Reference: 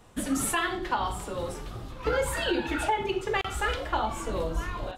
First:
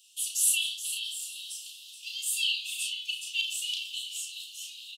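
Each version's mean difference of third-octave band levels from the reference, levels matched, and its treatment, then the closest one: 27.0 dB: Chebyshev high-pass 2700 Hz, order 8; doubler 33 ms -4.5 dB; feedback echo 0.425 s, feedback 26%, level -11 dB; gain +6.5 dB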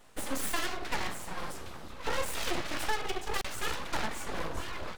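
7.0 dB: one-sided fold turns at -28.5 dBFS; bell 94 Hz -12.5 dB 1.3 oct; full-wave rectifier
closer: second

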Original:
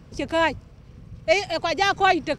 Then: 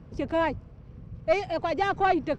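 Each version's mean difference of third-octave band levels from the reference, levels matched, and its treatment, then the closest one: 4.0 dB: one diode to ground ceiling -14 dBFS; LPF 1100 Hz 6 dB/oct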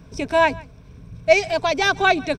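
2.0 dB: ripple EQ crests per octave 1.6, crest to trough 8 dB; on a send: echo 0.147 s -23 dB; on the sum: gain +1.5 dB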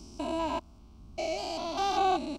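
7.0 dB: stepped spectrum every 0.2 s; fixed phaser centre 490 Hz, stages 6; gain -1 dB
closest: second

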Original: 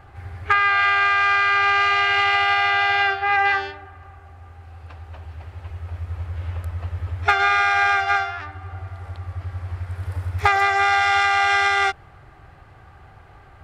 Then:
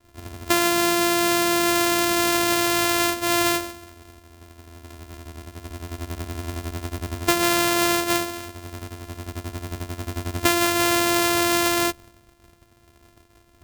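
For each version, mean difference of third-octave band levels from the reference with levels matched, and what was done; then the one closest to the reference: 13.5 dB: sample sorter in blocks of 128 samples; expander -40 dBFS; high shelf 6200 Hz +6 dB; gain -3 dB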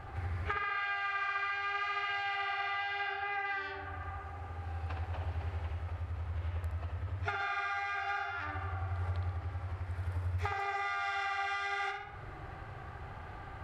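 7.5 dB: high shelf 8000 Hz -6.5 dB; compressor 10:1, threshold -34 dBFS, peak gain reduction 22 dB; tape echo 66 ms, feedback 64%, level -4 dB, low-pass 4200 Hz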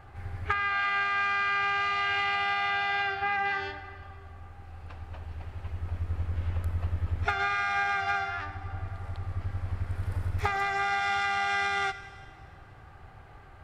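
5.0 dB: octaver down 2 oct, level -5 dB; compressor, threshold -21 dBFS, peak gain reduction 9.5 dB; Schroeder reverb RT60 1.9 s, combs from 27 ms, DRR 12 dB; gain -4 dB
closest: third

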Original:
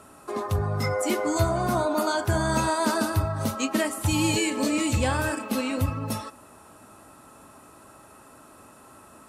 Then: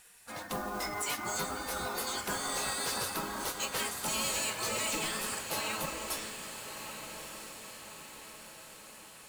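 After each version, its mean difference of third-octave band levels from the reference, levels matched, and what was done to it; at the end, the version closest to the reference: 12.0 dB: spectral gate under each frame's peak -15 dB weak; overloaded stage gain 29.5 dB; modulation noise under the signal 14 dB; on a send: diffused feedback echo 1.25 s, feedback 53%, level -8.5 dB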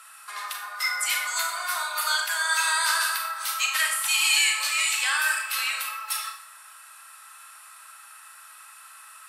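16.5 dB: HPF 1400 Hz 24 dB/oct; bell 6600 Hz -5.5 dB 0.38 oct; Schroeder reverb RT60 0.54 s, combs from 28 ms, DRR 3 dB; gain +7.5 dB; WMA 128 kbps 44100 Hz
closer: first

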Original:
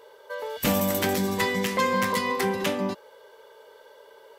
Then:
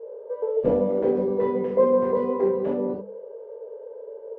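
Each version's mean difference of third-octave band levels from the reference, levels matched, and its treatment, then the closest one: 13.5 dB: synth low-pass 480 Hz, resonance Q 4.9; low shelf 340 Hz -7 dB; notches 50/100/150/200 Hz; non-linear reverb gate 90 ms flat, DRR -3 dB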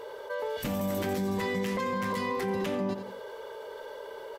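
6.5 dB: limiter -20 dBFS, peak gain reduction 10 dB; tilt -1.5 dB/oct; feedback echo 87 ms, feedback 32%, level -16.5 dB; fast leveller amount 50%; gain -5 dB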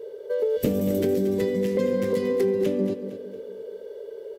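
9.0 dB: resonant low shelf 640 Hz +13 dB, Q 3; compressor, threshold -17 dBFS, peak gain reduction 12 dB; on a send: feedback echo 0.229 s, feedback 40%, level -11 dB; on the sum: gain -4 dB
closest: second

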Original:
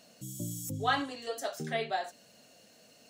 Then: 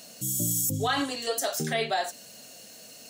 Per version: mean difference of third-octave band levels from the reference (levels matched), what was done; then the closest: 3.5 dB: high shelf 5100 Hz +12 dB; limiter -24 dBFS, peak gain reduction 9.5 dB; gain +7 dB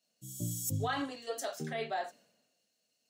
6.0 dB: limiter -27 dBFS, peak gain reduction 11.5 dB; three-band expander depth 100%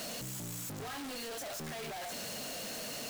15.5 dB: infinite clipping; notches 50/100 Hz; gain -4.5 dB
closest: first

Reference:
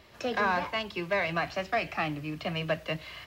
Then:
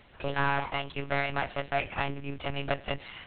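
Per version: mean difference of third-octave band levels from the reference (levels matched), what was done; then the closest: 8.0 dB: tube stage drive 24 dB, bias 0.75; monotone LPC vocoder at 8 kHz 140 Hz; gain +4 dB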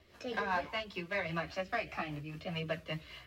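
2.5 dB: rotary speaker horn 5 Hz; chorus voices 2, 0.75 Hz, delay 13 ms, depth 2.6 ms; gain -1.5 dB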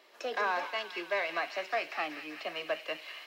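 6.0 dB: HPF 340 Hz 24 dB/oct; on a send: thin delay 0.193 s, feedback 76%, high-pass 1900 Hz, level -8 dB; on the sum: gain -3.5 dB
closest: second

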